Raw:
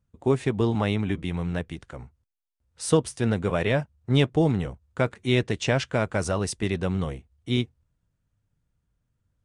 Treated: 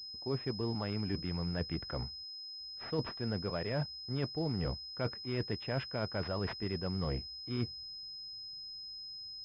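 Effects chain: reverse; compression 12:1, threshold -34 dBFS, peak gain reduction 20 dB; reverse; class-D stage that switches slowly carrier 5.1 kHz; trim +2 dB

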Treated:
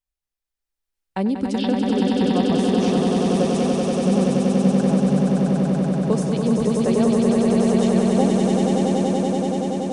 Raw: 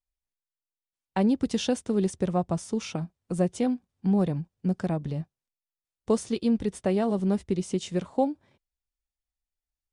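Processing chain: 1.58–2.47 s: steep low-pass 5 kHz 96 dB/octave; echo with a slow build-up 95 ms, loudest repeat 8, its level -4 dB; trim +1 dB

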